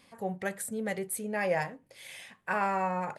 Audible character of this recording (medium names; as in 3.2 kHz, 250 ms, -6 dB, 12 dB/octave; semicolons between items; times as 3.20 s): noise floor -67 dBFS; spectral tilt -4.5 dB/octave